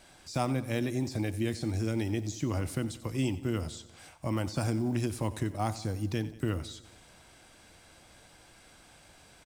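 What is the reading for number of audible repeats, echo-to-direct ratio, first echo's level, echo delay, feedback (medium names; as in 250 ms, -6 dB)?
4, -14.5 dB, -16.5 dB, 91 ms, 58%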